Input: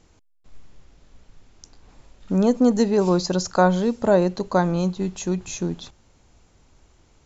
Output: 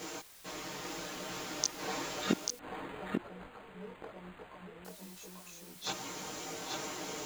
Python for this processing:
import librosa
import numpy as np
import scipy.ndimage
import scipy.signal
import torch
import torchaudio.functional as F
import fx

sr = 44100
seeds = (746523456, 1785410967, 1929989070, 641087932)

y = x + 0.85 * np.pad(x, (int(6.5 * sr / 1000.0), 0))[:len(x)]
y = fx.over_compress(y, sr, threshold_db=-20.0, ratio=-0.5)
y = fx.gate_flip(y, sr, shuts_db=-22.0, range_db=-41)
y = scipy.signal.sosfilt(scipy.signal.butter(2, 310.0, 'highpass', fs=sr, output='sos'), y)
y = fx.dmg_noise_colour(y, sr, seeds[0], colour='white', level_db=-70.0)
y = fx.chorus_voices(y, sr, voices=6, hz=0.61, base_ms=19, depth_ms=3.1, mix_pct=50)
y = y + 10.0 ** (-4.0 / 20.0) * np.pad(y, (int(840 * sr / 1000.0), 0))[:len(y)]
y = fx.resample_linear(y, sr, factor=8, at=(2.59, 4.85))
y = F.gain(torch.from_numpy(y), 17.5).numpy()